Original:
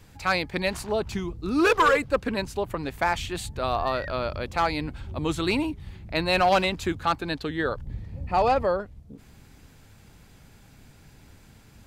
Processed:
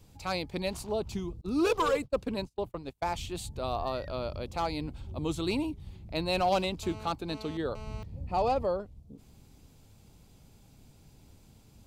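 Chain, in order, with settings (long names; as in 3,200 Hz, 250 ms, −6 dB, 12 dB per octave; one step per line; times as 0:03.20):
parametric band 1,700 Hz −12.5 dB 0.92 octaves
0:01.41–0:03.18: noise gate −30 dBFS, range −33 dB
0:06.83–0:08.03: phone interference −42 dBFS
level −4.5 dB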